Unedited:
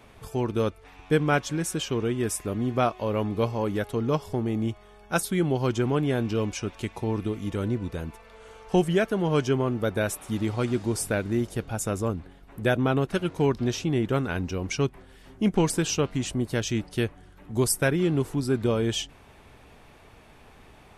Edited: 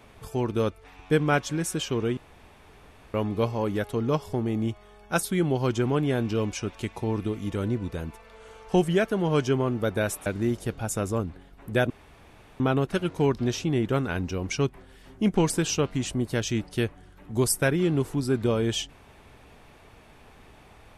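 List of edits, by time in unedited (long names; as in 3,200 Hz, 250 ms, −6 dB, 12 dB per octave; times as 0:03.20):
0:02.17–0:03.14: fill with room tone
0:10.26–0:11.16: remove
0:12.80: splice in room tone 0.70 s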